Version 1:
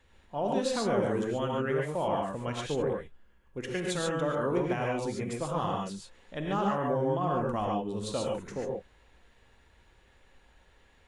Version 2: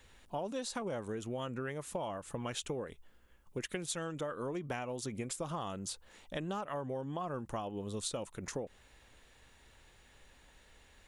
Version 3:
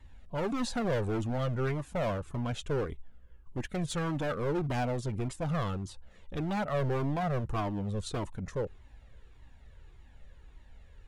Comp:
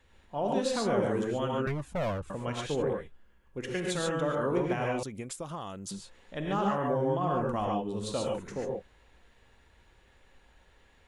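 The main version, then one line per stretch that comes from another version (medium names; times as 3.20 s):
1
1.67–2.30 s: from 3
5.03–5.91 s: from 2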